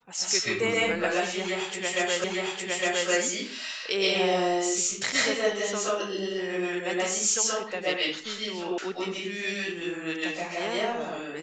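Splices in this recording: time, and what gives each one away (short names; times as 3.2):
2.24 repeat of the last 0.86 s
8.78 sound cut off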